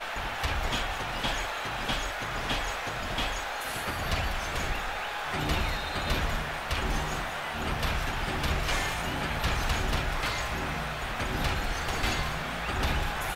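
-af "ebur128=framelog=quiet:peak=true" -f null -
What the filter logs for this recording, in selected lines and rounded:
Integrated loudness:
  I:         -30.7 LUFS
  Threshold: -40.7 LUFS
Loudness range:
  LRA:         1.4 LU
  Threshold: -50.7 LUFS
  LRA low:   -31.4 LUFS
  LRA high:  -29.9 LUFS
True peak:
  Peak:      -15.8 dBFS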